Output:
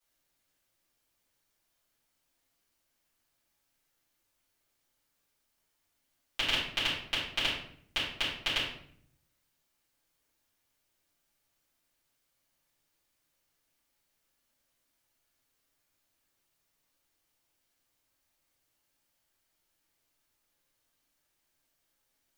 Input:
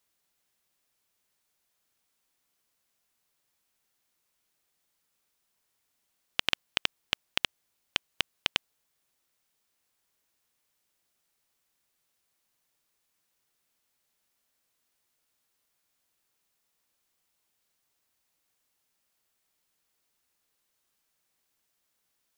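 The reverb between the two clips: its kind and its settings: shoebox room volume 110 m³, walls mixed, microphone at 3.8 m; gain -12.5 dB

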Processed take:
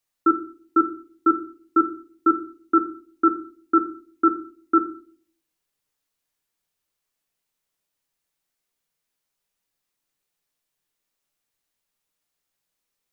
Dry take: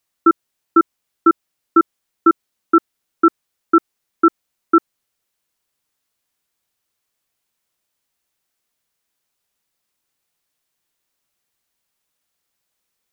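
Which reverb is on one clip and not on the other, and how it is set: shoebox room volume 37 m³, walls mixed, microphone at 0.35 m; gain -6 dB

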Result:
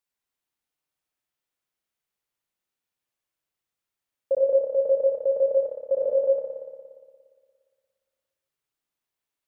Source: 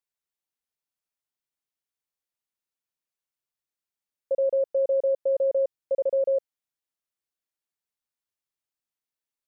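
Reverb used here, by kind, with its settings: spring tank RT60 1.8 s, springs 58 ms, chirp 50 ms, DRR -1 dB; gain +2.5 dB

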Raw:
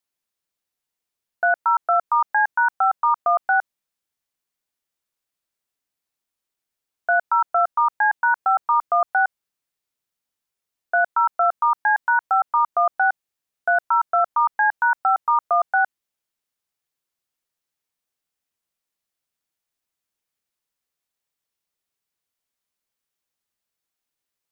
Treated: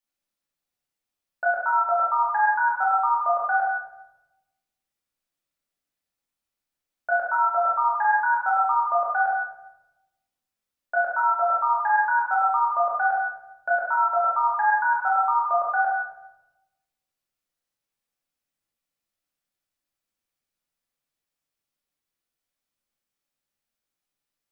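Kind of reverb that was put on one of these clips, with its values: shoebox room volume 370 m³, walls mixed, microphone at 2.4 m; gain -8 dB

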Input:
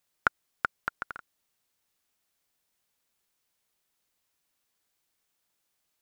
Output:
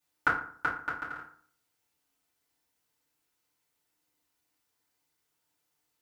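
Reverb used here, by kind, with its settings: FDN reverb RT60 0.52 s, low-frequency decay 1.1×, high-frequency decay 0.6×, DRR -9.5 dB; gain -9.5 dB

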